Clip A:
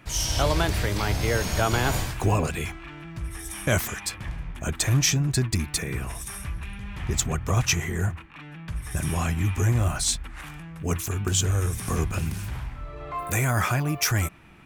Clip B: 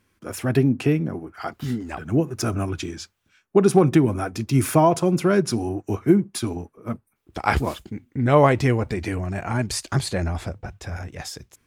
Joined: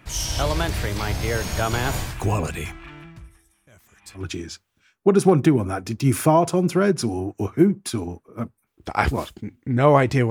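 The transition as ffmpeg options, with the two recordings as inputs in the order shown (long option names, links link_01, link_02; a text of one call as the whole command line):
ffmpeg -i cue0.wav -i cue1.wav -filter_complex "[0:a]asplit=3[link_01][link_02][link_03];[link_01]afade=type=out:start_time=2.92:duration=0.02[link_04];[link_02]aeval=exprs='val(0)*pow(10,-31*(0.5-0.5*cos(2*PI*0.68*n/s))/20)':channel_layout=same,afade=type=in:start_time=2.92:duration=0.02,afade=type=out:start_time=4.26:duration=0.02[link_05];[link_03]afade=type=in:start_time=4.26:duration=0.02[link_06];[link_04][link_05][link_06]amix=inputs=3:normalize=0,apad=whole_dur=10.3,atrim=end=10.3,atrim=end=4.26,asetpts=PTS-STARTPTS[link_07];[1:a]atrim=start=2.63:end=8.79,asetpts=PTS-STARTPTS[link_08];[link_07][link_08]acrossfade=duration=0.12:curve1=tri:curve2=tri" out.wav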